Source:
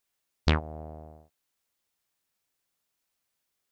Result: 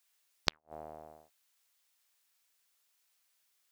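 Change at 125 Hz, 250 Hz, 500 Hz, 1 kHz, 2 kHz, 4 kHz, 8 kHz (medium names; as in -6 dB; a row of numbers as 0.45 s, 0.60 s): -23.5 dB, -16.0 dB, -9.0 dB, -7.0 dB, -6.5 dB, -0.5 dB, no reading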